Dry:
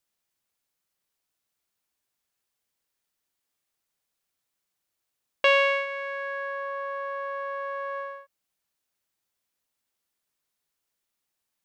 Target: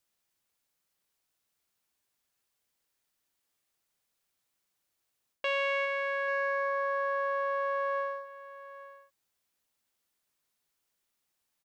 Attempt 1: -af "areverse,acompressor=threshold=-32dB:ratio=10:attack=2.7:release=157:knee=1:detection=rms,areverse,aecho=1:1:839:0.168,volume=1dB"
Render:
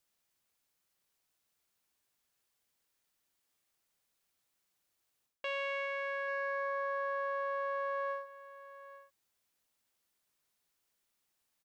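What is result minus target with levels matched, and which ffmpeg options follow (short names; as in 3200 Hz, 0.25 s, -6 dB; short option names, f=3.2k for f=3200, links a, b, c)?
compressor: peak gain reduction +6.5 dB
-af "areverse,acompressor=threshold=-24.5dB:ratio=10:attack=2.7:release=157:knee=1:detection=rms,areverse,aecho=1:1:839:0.168,volume=1dB"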